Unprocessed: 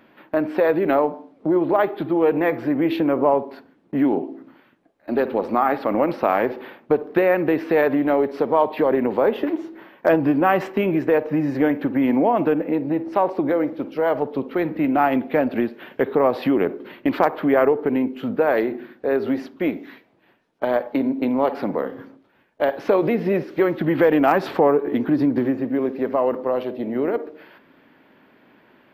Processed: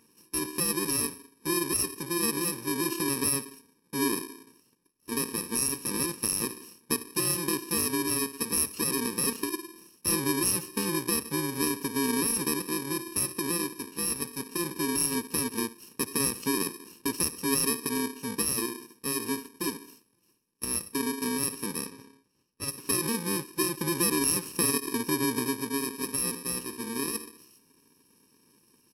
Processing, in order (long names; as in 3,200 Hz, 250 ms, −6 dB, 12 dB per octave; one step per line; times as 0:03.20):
samples in bit-reversed order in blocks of 64 samples
0:21.86–0:22.68: high-shelf EQ 7,900 Hz −11 dB
downsampling to 32,000 Hz
level −7.5 dB